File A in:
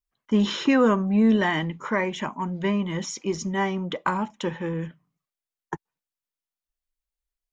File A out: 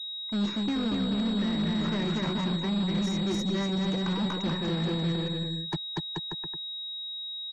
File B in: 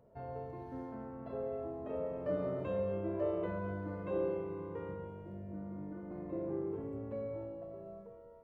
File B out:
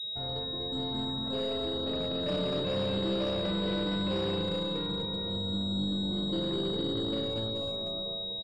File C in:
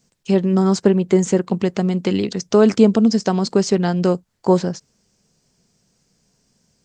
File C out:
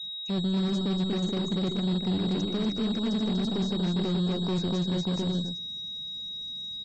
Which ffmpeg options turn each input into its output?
ffmpeg -i in.wav -filter_complex "[0:a]aeval=exprs='0.891*(cos(1*acos(clip(val(0)/0.891,-1,1)))-cos(1*PI/2))+0.0316*(cos(3*acos(clip(val(0)/0.891,-1,1)))-cos(3*PI/2))+0.0501*(cos(4*acos(clip(val(0)/0.891,-1,1)))-cos(4*PI/2))+0.00501*(cos(6*acos(clip(val(0)/0.891,-1,1)))-cos(6*PI/2))':channel_layout=same,acrossover=split=350|1800[link_01][link_02][link_03];[link_01]acompressor=threshold=-20dB:ratio=4[link_04];[link_02]acompressor=threshold=-33dB:ratio=4[link_05];[link_03]acompressor=threshold=-46dB:ratio=4[link_06];[link_04][link_05][link_06]amix=inputs=3:normalize=0,asuperstop=centerf=3100:order=4:qfactor=5.8,equalizer=frequency=810:width_type=o:width=2.1:gain=-4,aecho=1:1:240|432|585.6|708.5|806.8:0.631|0.398|0.251|0.158|0.1,areverse,acompressor=threshold=-33dB:ratio=8,areverse,aeval=exprs='0.0473*(cos(1*acos(clip(val(0)/0.0473,-1,1)))-cos(1*PI/2))+0.00841*(cos(2*acos(clip(val(0)/0.0473,-1,1)))-cos(2*PI/2))+0.00944*(cos(6*acos(clip(val(0)/0.0473,-1,1)))-cos(6*PI/2))+0.00944*(cos(8*acos(clip(val(0)/0.0473,-1,1)))-cos(8*PI/2))':channel_layout=same,aeval=exprs='val(0)+0.00794*sin(2*PI*3800*n/s)':channel_layout=same,asoftclip=type=tanh:threshold=-33.5dB,adynamicequalizer=threshold=0.00282:dfrequency=180:dqfactor=0.8:tfrequency=180:tqfactor=0.8:attack=5:release=100:ratio=0.375:range=2:mode=boostabove:tftype=bell,afftfilt=real='re*gte(hypot(re,im),0.00112)':imag='im*gte(hypot(re,im),0.00112)':win_size=1024:overlap=0.75,volume=8.5dB" -ar 32000 -c:a libmp3lame -b:a 80k out.mp3

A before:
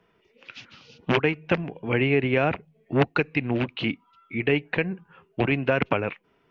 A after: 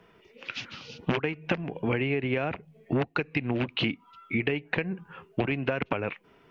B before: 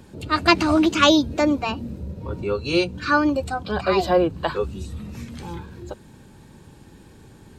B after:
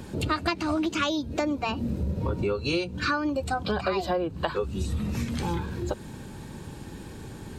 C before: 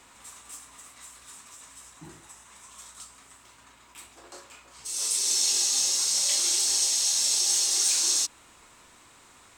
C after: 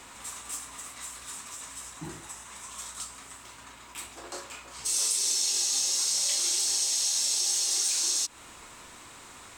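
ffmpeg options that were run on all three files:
ffmpeg -i in.wav -af "acompressor=threshold=-30dB:ratio=16,volume=6.5dB" out.wav

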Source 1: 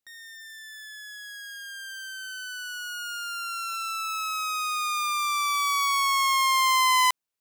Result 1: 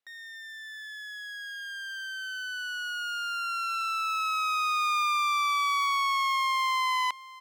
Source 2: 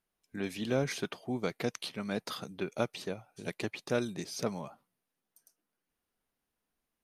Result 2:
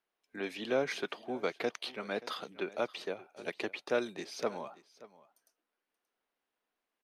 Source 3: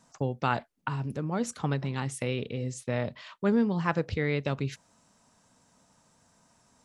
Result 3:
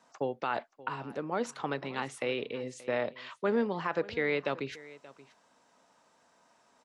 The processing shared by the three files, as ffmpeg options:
ffmpeg -i in.wav -filter_complex "[0:a]acrossover=split=290 4400:gain=0.1 1 0.251[link_01][link_02][link_03];[link_01][link_02][link_03]amix=inputs=3:normalize=0,alimiter=limit=-21.5dB:level=0:latency=1:release=48,asplit=2[link_04][link_05];[link_05]aecho=0:1:579:0.106[link_06];[link_04][link_06]amix=inputs=2:normalize=0,volume=2dB" out.wav

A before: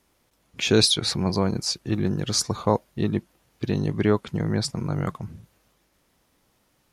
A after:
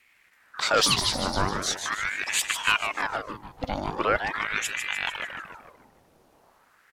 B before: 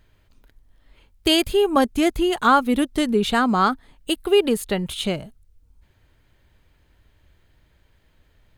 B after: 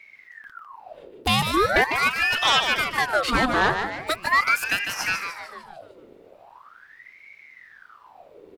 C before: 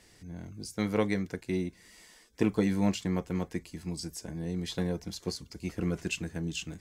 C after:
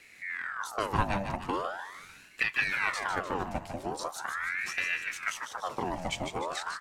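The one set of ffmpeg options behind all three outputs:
ffmpeg -i in.wav -filter_complex "[0:a]tiltshelf=frequency=970:gain=5,acrossover=split=480|3000[link_01][link_02][link_03];[link_01]acompressor=threshold=-37dB:ratio=6[link_04];[link_04][link_02][link_03]amix=inputs=3:normalize=0,asplit=2[link_05][link_06];[link_06]aeval=exprs='0.562*sin(PI/2*3.16*val(0)/0.562)':channel_layout=same,volume=-6.5dB[link_07];[link_05][link_07]amix=inputs=2:normalize=0,asplit=7[link_08][link_09][link_10][link_11][link_12][link_13][link_14];[link_09]adelay=150,afreqshift=57,volume=-7dB[link_15];[link_10]adelay=300,afreqshift=114,volume=-13.4dB[link_16];[link_11]adelay=450,afreqshift=171,volume=-19.8dB[link_17];[link_12]adelay=600,afreqshift=228,volume=-26.1dB[link_18];[link_13]adelay=750,afreqshift=285,volume=-32.5dB[link_19];[link_14]adelay=900,afreqshift=342,volume=-38.9dB[link_20];[link_08][link_15][link_16][link_17][link_18][link_19][link_20]amix=inputs=7:normalize=0,aeval=exprs='val(0)*sin(2*PI*1300*n/s+1300*0.7/0.41*sin(2*PI*0.41*n/s))':channel_layout=same,volume=-4.5dB" out.wav

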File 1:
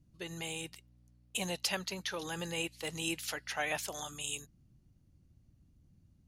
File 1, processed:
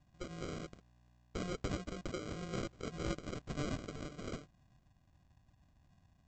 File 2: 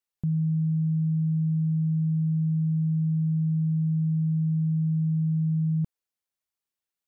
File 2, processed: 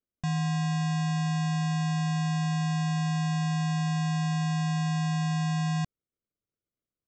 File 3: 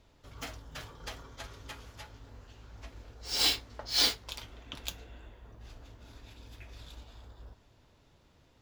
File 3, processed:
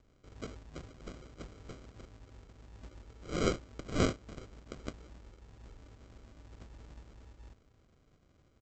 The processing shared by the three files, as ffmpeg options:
ffmpeg -i in.wav -af "equalizer=frequency=2200:width=1.5:gain=2,aresample=16000,acrusher=samples=18:mix=1:aa=0.000001,aresample=44100,volume=-3dB" out.wav

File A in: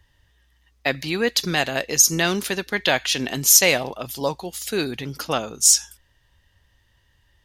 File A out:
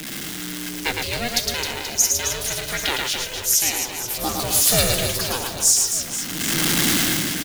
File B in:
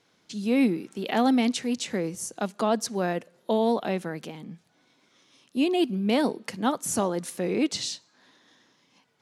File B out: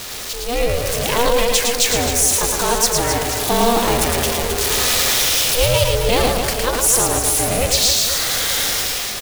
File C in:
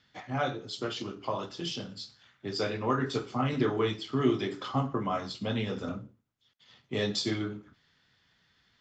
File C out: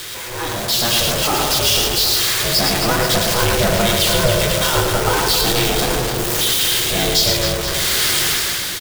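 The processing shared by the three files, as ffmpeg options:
ffmpeg -i in.wav -filter_complex "[0:a]aeval=exprs='val(0)+0.5*0.0562*sgn(val(0))':channel_layout=same,aeval=exprs='val(0)*sin(2*PI*240*n/s)':channel_layout=same,highshelf=frequency=3100:gain=11,dynaudnorm=framelen=130:gausssize=9:maxgain=13.5dB,asplit=2[link_01][link_02];[link_02]aecho=0:1:110|264|479.6|781.4|1204:0.631|0.398|0.251|0.158|0.1[link_03];[link_01][link_03]amix=inputs=2:normalize=0,volume=-2.5dB" out.wav

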